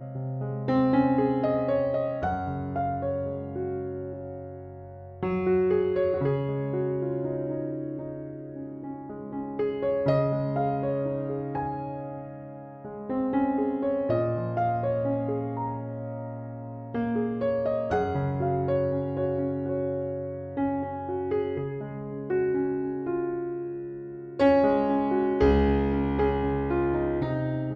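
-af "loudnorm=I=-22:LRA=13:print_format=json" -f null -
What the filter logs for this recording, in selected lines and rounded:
"input_i" : "-27.4",
"input_tp" : "-10.0",
"input_lra" : "5.1",
"input_thresh" : "-37.8",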